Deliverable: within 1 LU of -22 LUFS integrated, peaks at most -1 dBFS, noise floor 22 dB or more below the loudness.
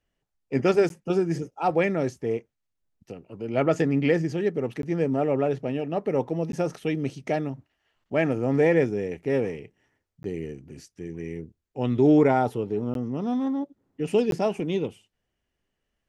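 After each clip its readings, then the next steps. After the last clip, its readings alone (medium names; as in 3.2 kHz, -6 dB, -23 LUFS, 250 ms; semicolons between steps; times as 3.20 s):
dropouts 6; longest dropout 12 ms; loudness -25.5 LUFS; peak level -8.5 dBFS; loudness target -22.0 LUFS
-> interpolate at 0.89/4.82/6.52/10.23/12.94/14.31 s, 12 ms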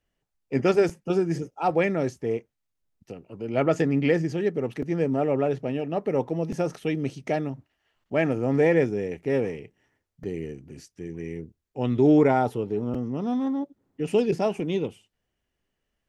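dropouts 0; loudness -25.5 LUFS; peak level -8.5 dBFS; loudness target -22.0 LUFS
-> trim +3.5 dB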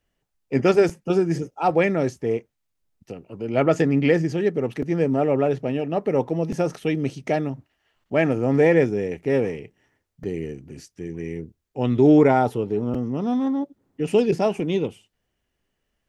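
loudness -22.0 LUFS; peak level -5.0 dBFS; noise floor -77 dBFS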